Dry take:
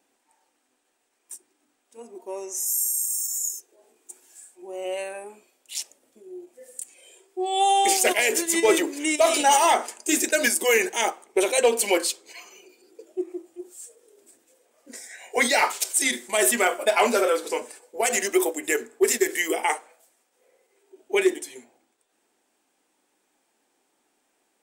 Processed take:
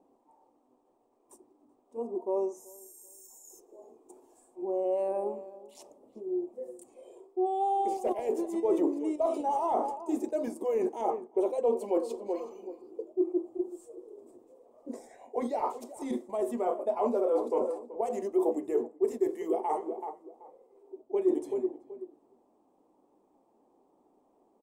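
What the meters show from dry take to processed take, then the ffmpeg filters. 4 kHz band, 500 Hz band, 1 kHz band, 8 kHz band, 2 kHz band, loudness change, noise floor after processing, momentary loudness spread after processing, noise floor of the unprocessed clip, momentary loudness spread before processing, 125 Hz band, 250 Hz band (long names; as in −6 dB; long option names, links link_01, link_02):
below −30 dB, −4.5 dB, −8.0 dB, below −25 dB, below −30 dB, −9.0 dB, −69 dBFS, 19 LU, −72 dBFS, 19 LU, can't be measured, −2.5 dB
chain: -filter_complex "[0:a]asplit=2[link_01][link_02];[link_02]adelay=381,lowpass=frequency=1100:poles=1,volume=-16.5dB,asplit=2[link_03][link_04];[link_04]adelay=381,lowpass=frequency=1100:poles=1,volume=0.24[link_05];[link_01][link_03][link_05]amix=inputs=3:normalize=0,areverse,acompressor=threshold=-32dB:ratio=6,areverse,firequalizer=gain_entry='entry(390,0);entry(1100,-5);entry(1500,-27)':delay=0.05:min_phase=1,volume=8dB"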